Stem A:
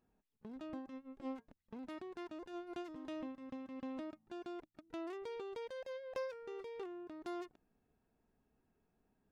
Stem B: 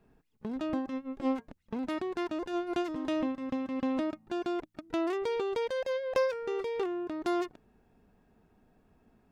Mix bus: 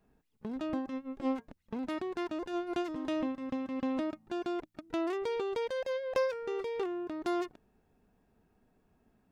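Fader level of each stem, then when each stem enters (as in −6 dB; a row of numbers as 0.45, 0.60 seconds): +1.5, −5.5 decibels; 0.00, 0.00 seconds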